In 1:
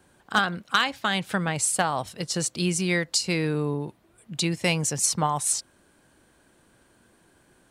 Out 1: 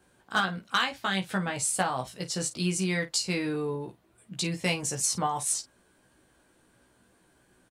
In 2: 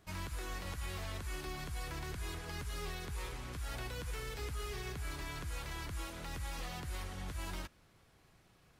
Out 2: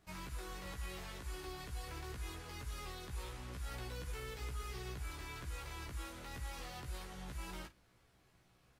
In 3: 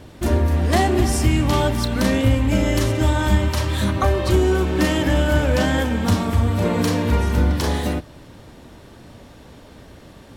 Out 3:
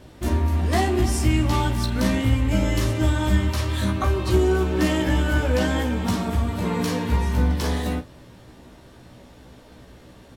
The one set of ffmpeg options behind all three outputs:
-af "aecho=1:1:16|52:0.708|0.2,volume=-5.5dB"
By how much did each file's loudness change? −3.5, −3.5, −3.0 LU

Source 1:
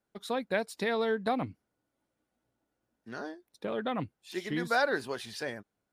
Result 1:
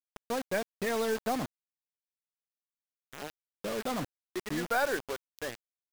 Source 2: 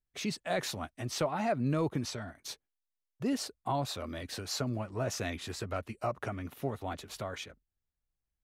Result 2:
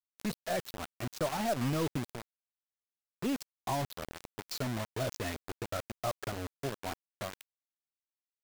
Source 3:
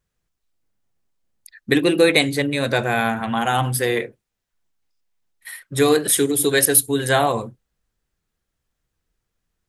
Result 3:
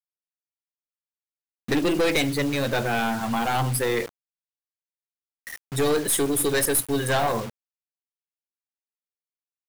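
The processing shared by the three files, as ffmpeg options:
-af "afftdn=noise_reduction=13:noise_floor=-34,acrusher=bits=5:mix=0:aa=0.000001,aeval=exprs='(tanh(7.94*val(0)+0.3)-tanh(0.3))/7.94':channel_layout=same"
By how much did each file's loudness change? −1.0, −1.5, −5.0 LU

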